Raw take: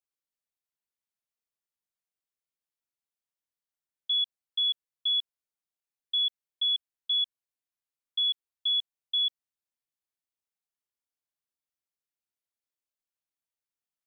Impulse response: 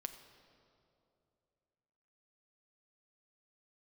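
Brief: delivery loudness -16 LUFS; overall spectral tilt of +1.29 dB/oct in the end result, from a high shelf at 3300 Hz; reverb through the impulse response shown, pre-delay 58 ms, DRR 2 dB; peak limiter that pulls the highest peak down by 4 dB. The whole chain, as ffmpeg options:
-filter_complex "[0:a]highshelf=f=3.3k:g=-5.5,alimiter=level_in=5dB:limit=-24dB:level=0:latency=1,volume=-5dB,asplit=2[a][b];[1:a]atrim=start_sample=2205,adelay=58[c];[b][c]afir=irnorm=-1:irlink=0,volume=1dB[d];[a][d]amix=inputs=2:normalize=0,volume=19.5dB"

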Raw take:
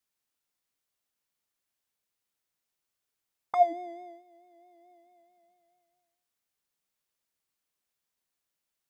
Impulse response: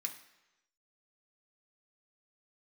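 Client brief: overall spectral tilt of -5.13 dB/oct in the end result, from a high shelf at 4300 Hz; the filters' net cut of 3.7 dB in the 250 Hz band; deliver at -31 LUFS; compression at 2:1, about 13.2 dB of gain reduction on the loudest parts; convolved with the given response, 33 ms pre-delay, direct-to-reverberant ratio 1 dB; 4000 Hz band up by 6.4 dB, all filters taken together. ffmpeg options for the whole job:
-filter_complex "[0:a]equalizer=f=250:t=o:g=-6.5,equalizer=f=4k:t=o:g=4,highshelf=f=4.3k:g=7,acompressor=threshold=-42dB:ratio=2,asplit=2[a][b];[1:a]atrim=start_sample=2205,adelay=33[c];[b][c]afir=irnorm=-1:irlink=0,volume=0dB[d];[a][d]amix=inputs=2:normalize=0,volume=11.5dB"

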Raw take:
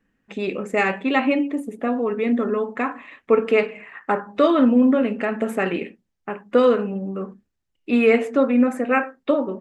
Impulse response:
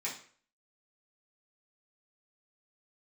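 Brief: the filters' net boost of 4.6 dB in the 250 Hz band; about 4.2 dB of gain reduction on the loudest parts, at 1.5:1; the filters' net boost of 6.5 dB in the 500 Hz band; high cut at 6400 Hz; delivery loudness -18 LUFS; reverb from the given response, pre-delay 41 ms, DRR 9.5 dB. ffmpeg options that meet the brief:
-filter_complex "[0:a]lowpass=6.4k,equalizer=f=250:t=o:g=3.5,equalizer=f=500:t=o:g=6.5,acompressor=threshold=-17dB:ratio=1.5,asplit=2[a][b];[1:a]atrim=start_sample=2205,adelay=41[c];[b][c]afir=irnorm=-1:irlink=0,volume=-12.5dB[d];[a][d]amix=inputs=2:normalize=0,volume=0.5dB"

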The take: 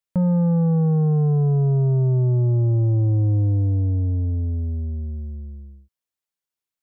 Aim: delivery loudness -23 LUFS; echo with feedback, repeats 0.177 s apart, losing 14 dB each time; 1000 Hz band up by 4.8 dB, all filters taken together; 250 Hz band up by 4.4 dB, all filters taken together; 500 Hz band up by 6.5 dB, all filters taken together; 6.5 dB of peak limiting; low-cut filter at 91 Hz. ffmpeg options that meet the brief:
-af "highpass=91,equalizer=f=250:t=o:g=9,equalizer=f=500:t=o:g=4,equalizer=f=1k:t=o:g=4,alimiter=limit=-13.5dB:level=0:latency=1,aecho=1:1:177|354:0.2|0.0399,volume=-2.5dB"

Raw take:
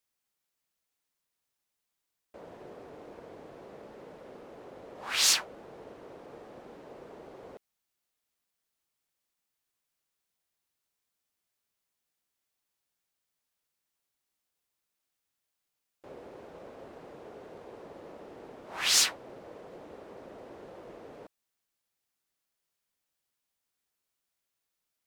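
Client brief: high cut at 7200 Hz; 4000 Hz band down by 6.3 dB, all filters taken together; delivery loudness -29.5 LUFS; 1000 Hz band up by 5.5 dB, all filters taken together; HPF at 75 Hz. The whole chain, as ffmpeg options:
-af "highpass=75,lowpass=7.2k,equalizer=f=1k:t=o:g=7.5,equalizer=f=4k:t=o:g=-8,volume=8.5dB"

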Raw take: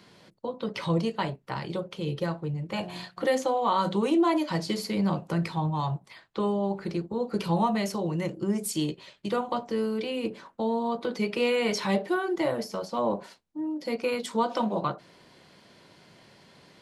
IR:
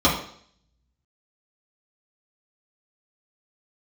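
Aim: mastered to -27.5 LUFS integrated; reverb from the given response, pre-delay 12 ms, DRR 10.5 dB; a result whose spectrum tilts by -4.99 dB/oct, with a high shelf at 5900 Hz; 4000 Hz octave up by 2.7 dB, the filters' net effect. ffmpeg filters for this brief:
-filter_complex "[0:a]equalizer=f=4k:t=o:g=5.5,highshelf=f=5.9k:g=-5.5,asplit=2[a][b];[1:a]atrim=start_sample=2205,adelay=12[c];[b][c]afir=irnorm=-1:irlink=0,volume=-29.5dB[d];[a][d]amix=inputs=2:normalize=0,volume=0.5dB"

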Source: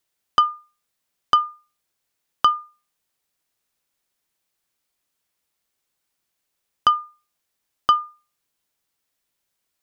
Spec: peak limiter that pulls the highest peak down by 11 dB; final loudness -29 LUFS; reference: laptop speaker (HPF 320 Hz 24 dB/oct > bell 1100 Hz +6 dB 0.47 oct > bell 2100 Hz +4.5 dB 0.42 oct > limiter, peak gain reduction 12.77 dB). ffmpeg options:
-af "alimiter=limit=-15dB:level=0:latency=1,highpass=f=320:w=0.5412,highpass=f=320:w=1.3066,equalizer=f=1.1k:t=o:w=0.47:g=6,equalizer=f=2.1k:t=o:w=0.42:g=4.5,volume=3.5dB,alimiter=limit=-20dB:level=0:latency=1"

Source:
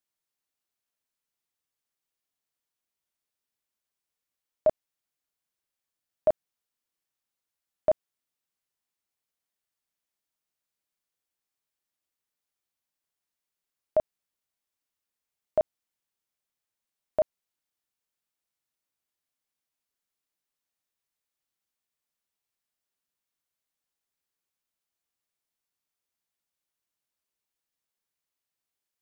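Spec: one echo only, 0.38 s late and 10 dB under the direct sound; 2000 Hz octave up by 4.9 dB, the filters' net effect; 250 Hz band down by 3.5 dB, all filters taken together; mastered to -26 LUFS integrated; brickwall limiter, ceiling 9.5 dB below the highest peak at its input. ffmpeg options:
-af "equalizer=f=250:t=o:g=-5,equalizer=f=2k:t=o:g=6.5,alimiter=limit=-24dB:level=0:latency=1,aecho=1:1:380:0.316,volume=15dB"

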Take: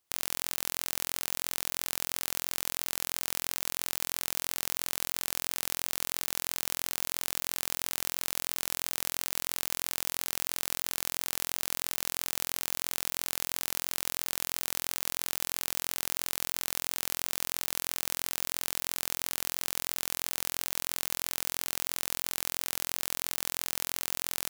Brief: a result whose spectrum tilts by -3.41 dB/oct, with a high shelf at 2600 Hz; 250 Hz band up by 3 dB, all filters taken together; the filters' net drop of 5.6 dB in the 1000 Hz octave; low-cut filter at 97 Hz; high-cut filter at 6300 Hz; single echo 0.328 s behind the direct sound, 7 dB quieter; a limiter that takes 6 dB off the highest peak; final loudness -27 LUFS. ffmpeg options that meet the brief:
-af "highpass=97,lowpass=6.3k,equalizer=f=250:t=o:g=4.5,equalizer=f=1k:t=o:g=-6,highshelf=f=2.6k:g=-9,alimiter=level_in=1.5dB:limit=-24dB:level=0:latency=1,volume=-1.5dB,aecho=1:1:328:0.447,volume=21.5dB"

